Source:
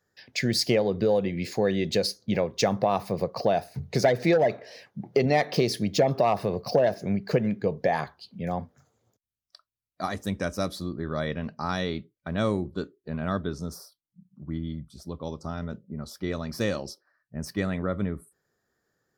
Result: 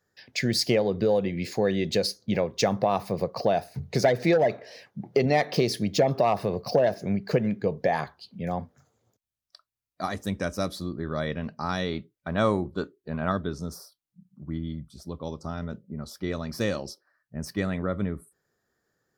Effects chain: 11.91–13.32 dynamic EQ 990 Hz, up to +7 dB, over -43 dBFS, Q 0.83

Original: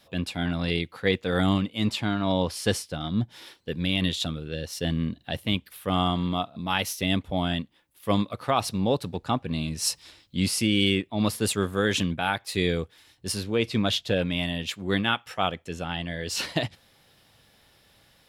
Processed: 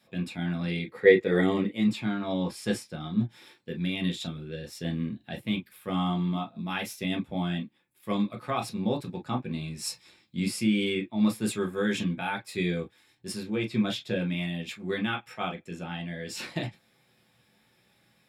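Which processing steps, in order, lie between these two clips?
0.87–1.8 small resonant body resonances 430/1900 Hz, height 16 dB -> 14 dB, ringing for 25 ms; reverb, pre-delay 3 ms, DRR 1 dB; gain -9 dB

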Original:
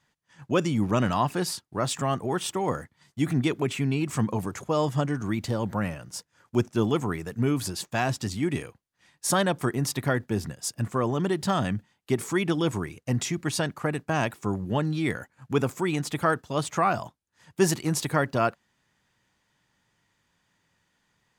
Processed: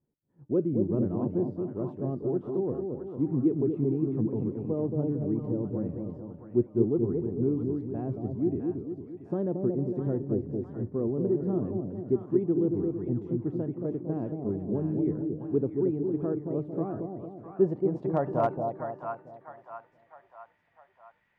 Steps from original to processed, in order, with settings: de-hum 297.7 Hz, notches 36; low-pass sweep 380 Hz -> 2200 Hz, 17.3–19.77; split-band echo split 830 Hz, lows 0.226 s, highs 0.656 s, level -4 dB; slew limiter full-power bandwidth 210 Hz; gain -6.5 dB

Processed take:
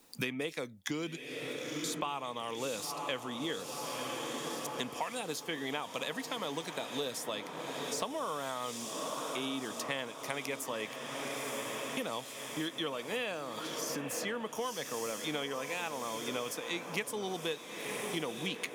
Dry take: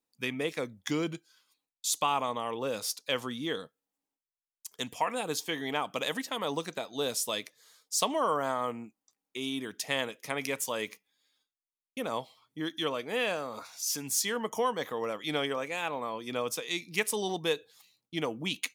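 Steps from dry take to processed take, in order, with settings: diffused feedback echo 0.965 s, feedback 66%, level -11 dB; three-band squash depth 100%; gain -5.5 dB

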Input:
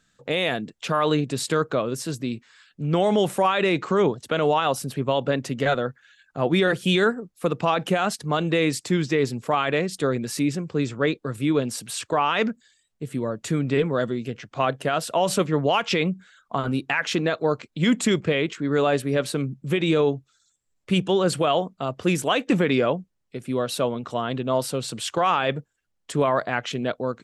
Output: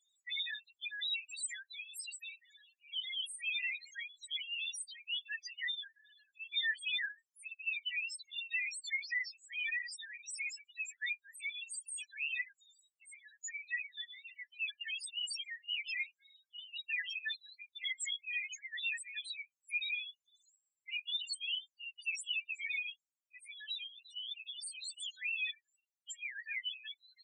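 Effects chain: steep high-pass 1800 Hz 72 dB/oct; high shelf 3900 Hz +7 dB; in parallel at +0.5 dB: negative-ratio compressor -32 dBFS; on the sum: loudest bins only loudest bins 2; gain -3.5 dB

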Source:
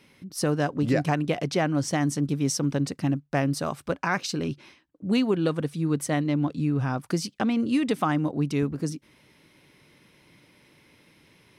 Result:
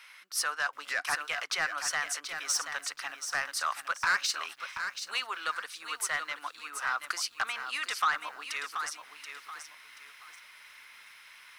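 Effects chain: in parallel at 0 dB: compressor 10:1, threshold -34 dBFS, peak gain reduction 16 dB; on the sum: ladder high-pass 1100 Hz, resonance 45%; soft clip -29 dBFS, distortion -11 dB; lo-fi delay 0.73 s, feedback 35%, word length 11-bit, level -8 dB; gain +8.5 dB

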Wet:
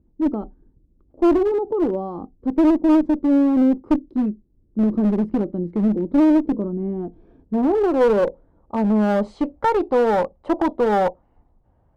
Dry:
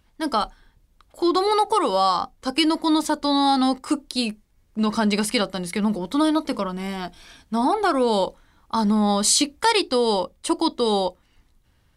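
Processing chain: low-pass sweep 330 Hz -> 740 Hz, 6.55–9.9; one-sided clip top -18.5 dBFS, bottom -9.5 dBFS; gain +1.5 dB

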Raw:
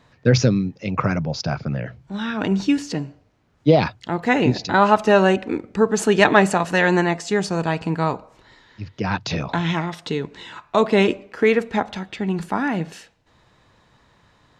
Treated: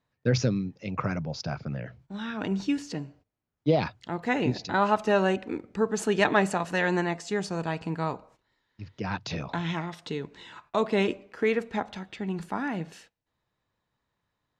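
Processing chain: gate -46 dBFS, range -15 dB; gain -8.5 dB

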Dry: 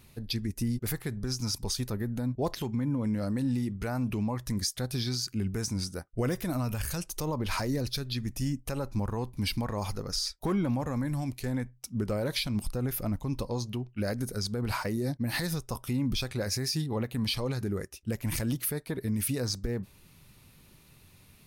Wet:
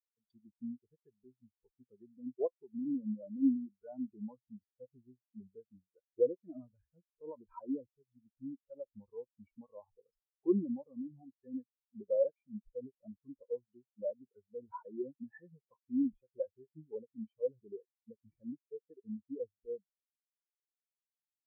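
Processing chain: tone controls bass -13 dB, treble +3 dB; treble ducked by the level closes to 1600 Hz, closed at -31.5 dBFS; spectral expander 4:1; gain +1.5 dB

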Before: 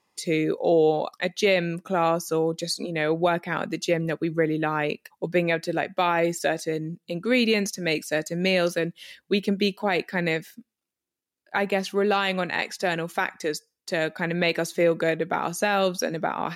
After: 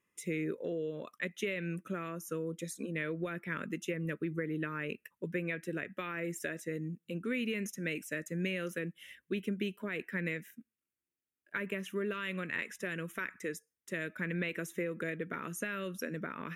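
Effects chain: compressor, threshold -23 dBFS, peak gain reduction 8 dB; fixed phaser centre 1900 Hz, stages 4; gain -5.5 dB

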